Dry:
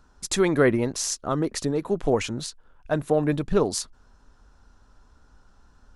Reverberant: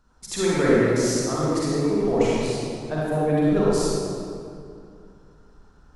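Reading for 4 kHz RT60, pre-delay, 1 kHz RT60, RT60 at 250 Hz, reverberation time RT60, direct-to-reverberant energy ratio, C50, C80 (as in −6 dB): 1.5 s, 38 ms, 2.3 s, 2.8 s, 2.4 s, −8.0 dB, −6.5 dB, −3.5 dB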